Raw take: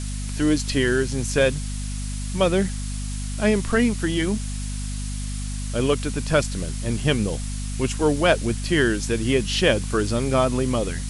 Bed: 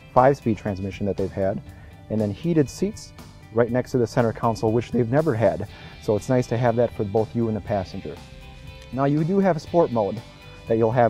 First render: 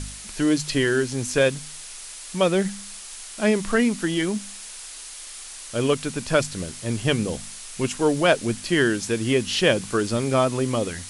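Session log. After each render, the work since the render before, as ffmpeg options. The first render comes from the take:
-af "bandreject=f=50:t=h:w=4,bandreject=f=100:t=h:w=4,bandreject=f=150:t=h:w=4,bandreject=f=200:t=h:w=4,bandreject=f=250:t=h:w=4"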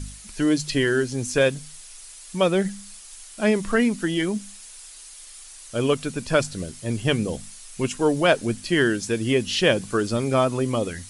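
-af "afftdn=nr=8:nf=-39"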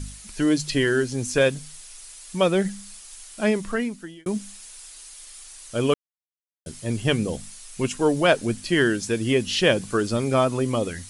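-filter_complex "[0:a]asplit=4[s0][s1][s2][s3];[s0]atrim=end=4.26,asetpts=PTS-STARTPTS,afade=t=out:st=3.36:d=0.9[s4];[s1]atrim=start=4.26:end=5.94,asetpts=PTS-STARTPTS,afade=t=in:d=0.004:c=hsin,afade=t=out:st=1.676:d=0.004:c=hsin[s5];[s2]atrim=start=5.94:end=6.66,asetpts=PTS-STARTPTS,volume=0[s6];[s3]atrim=start=6.66,asetpts=PTS-STARTPTS,afade=t=in:d=0.004:c=hsin[s7];[s4][s5][s6][s7]concat=n=4:v=0:a=1"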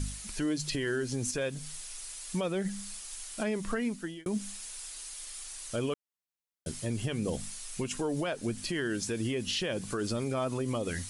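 -af "acompressor=threshold=0.0562:ratio=6,alimiter=limit=0.0708:level=0:latency=1:release=72"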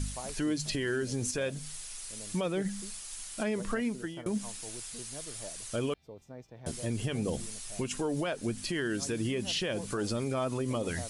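-filter_complex "[1:a]volume=0.0447[s0];[0:a][s0]amix=inputs=2:normalize=0"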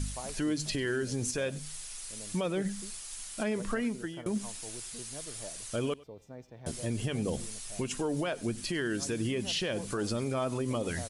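-af "aecho=1:1:98:0.0841"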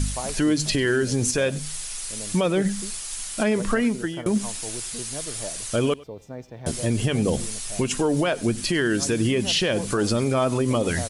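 -af "volume=3.16"

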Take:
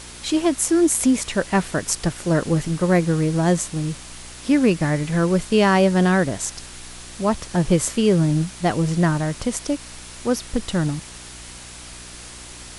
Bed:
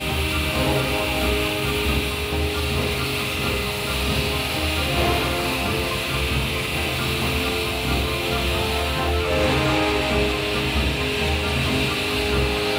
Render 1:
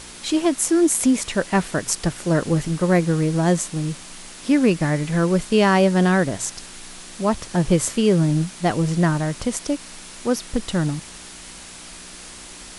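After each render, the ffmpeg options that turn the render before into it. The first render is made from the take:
-af "bandreject=f=60:t=h:w=4,bandreject=f=120:t=h:w=4"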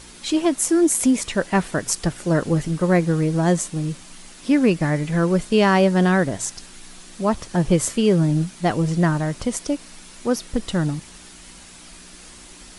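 -af "afftdn=nr=6:nf=-40"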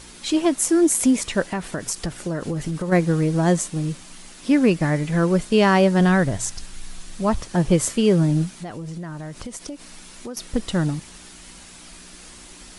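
-filter_complex "[0:a]asplit=3[s0][s1][s2];[s0]afade=t=out:st=1.47:d=0.02[s3];[s1]acompressor=threshold=0.0891:ratio=12:attack=3.2:release=140:knee=1:detection=peak,afade=t=in:st=1.47:d=0.02,afade=t=out:st=2.91:d=0.02[s4];[s2]afade=t=in:st=2.91:d=0.02[s5];[s3][s4][s5]amix=inputs=3:normalize=0,asplit=3[s6][s7][s8];[s6]afade=t=out:st=5.99:d=0.02[s9];[s7]asubboost=boost=3:cutoff=140,afade=t=in:st=5.99:d=0.02,afade=t=out:st=7.4:d=0.02[s10];[s8]afade=t=in:st=7.4:d=0.02[s11];[s9][s10][s11]amix=inputs=3:normalize=0,asettb=1/sr,asplit=3[s12][s13][s14];[s12]atrim=end=8.484[s15];[s13]atrim=start=8.48:end=10.37,asetpts=PTS-STARTPTS,afade=t=in:d=0.004:c=qsin,afade=t=out:st=1.886:d=0.004:c=qsin,acompressor=threshold=0.0316:ratio=6:attack=3.2:release=140:knee=1:detection=peak[s16];[s14]atrim=start=10.366[s17];[s15][s16]acrossfade=d=0.004:c1=hsin:c2=qsin[s18];[s18][s17]acrossfade=d=0.004:c1=qsin:c2=hsin"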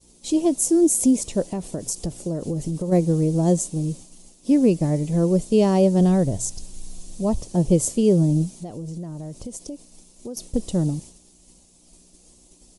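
-af "agate=range=0.0224:threshold=0.0178:ratio=3:detection=peak,firequalizer=gain_entry='entry(540,0);entry(1500,-22);entry(2600,-12);entry(6400,0)':delay=0.05:min_phase=1"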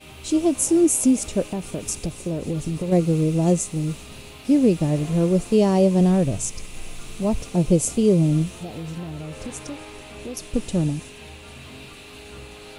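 -filter_complex "[1:a]volume=0.106[s0];[0:a][s0]amix=inputs=2:normalize=0"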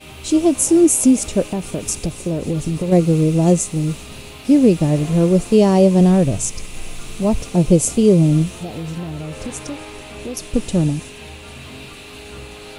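-af "volume=1.78,alimiter=limit=0.794:level=0:latency=1"

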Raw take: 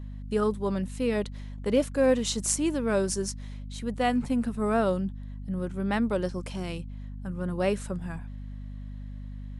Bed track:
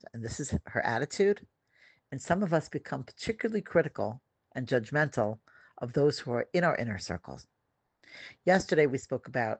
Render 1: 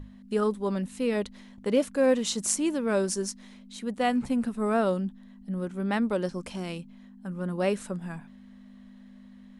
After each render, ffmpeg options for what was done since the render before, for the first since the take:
-af "bandreject=f=50:t=h:w=6,bandreject=f=100:t=h:w=6,bandreject=f=150:t=h:w=6"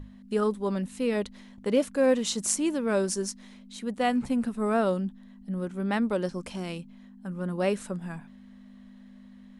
-af anull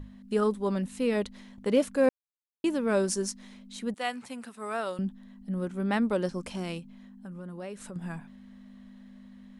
-filter_complex "[0:a]asettb=1/sr,asplit=3[s0][s1][s2];[s0]atrim=end=3.944[s3];[s1]atrim=start=3.94:end=4.99,asetpts=PTS-STARTPTS,afade=t=in:d=0.004:c=qsin,afade=t=out:st=1.046:d=0.004:c=qsin,highpass=f=1300:p=1[s4];[s2]atrim=start=4.986[s5];[s3][s4]acrossfade=d=0.004:c1=hsin:c2=qsin[s6];[s6][s5]acrossfade=d=0.004:c1=qsin:c2=hsin,asettb=1/sr,asplit=3[s7][s8][s9];[s7]atrim=end=6.794[s10];[s8]atrim=start=6.79:end=7.96,asetpts=PTS-STARTPTS,afade=t=in:d=0.004:c=qsin,afade=t=out:st=1.166:d=0.004:c=qsin,acompressor=threshold=0.01:ratio=3:attack=3.2:release=140:knee=1:detection=peak[s11];[s9]atrim=start=7.956[s12];[s10][s11]acrossfade=d=0.004:c1=hsin:c2=qsin[s13];[s13][s12]acrossfade=d=0.004:c1=qsin:c2=hsin,asplit=3[s14][s15][s16];[s14]atrim=end=2.09,asetpts=PTS-STARTPTS,afade=t=out:st=2.086:d=0.004:c=hsin[s17];[s15]atrim=start=2.09:end=2.64,asetpts=PTS-STARTPTS,volume=0[s18];[s16]atrim=start=2.64,asetpts=PTS-STARTPTS,afade=t=in:d=0.004:c=hsin[s19];[s17][s18][s19]concat=n=3:v=0:a=1"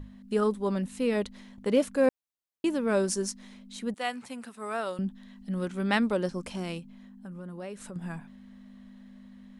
-filter_complex "[0:a]asettb=1/sr,asplit=3[s0][s1][s2];[s0]atrim=end=5.154[s3];[s1]atrim=start=5.15:end=6.11,asetpts=PTS-STARTPTS,afade=t=in:d=0.004:c=qsin,afade=t=out:st=0.956:d=0.004:c=qsin,equalizer=f=4000:t=o:w=2.8:g=8.5[s4];[s2]atrim=start=6.106[s5];[s3][s4]acrossfade=d=0.004:c1=hsin:c2=qsin[s6];[s6][s5]acrossfade=d=0.004:c1=qsin:c2=hsin"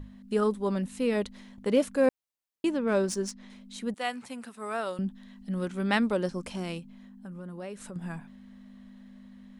-filter_complex "[0:a]asettb=1/sr,asplit=3[s0][s1][s2];[s0]atrim=end=2.704[s3];[s1]atrim=start=2.7:end=3.5,asetpts=PTS-STARTPTS,afade=t=in:d=0.004:c=qsin,afade=t=out:st=0.796:d=0.004:c=qsin,adynamicsmooth=sensitivity=5:basefreq=5100[s4];[s2]atrim=start=3.496[s5];[s3][s4]acrossfade=d=0.004:c1=hsin:c2=qsin[s6];[s6][s5]acrossfade=d=0.004:c1=qsin:c2=hsin"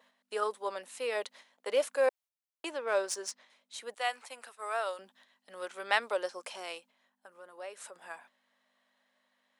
-af "agate=range=0.398:threshold=0.00501:ratio=16:detection=peak,highpass=f=530:w=0.5412,highpass=f=530:w=1.3066"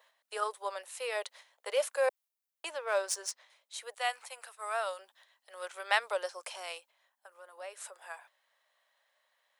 -af "highpass=f=500:w=0.5412,highpass=f=500:w=1.3066,highshelf=f=10000:g=7.5"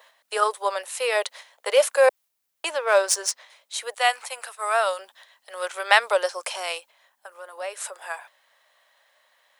-af "volume=3.98,alimiter=limit=0.891:level=0:latency=1"

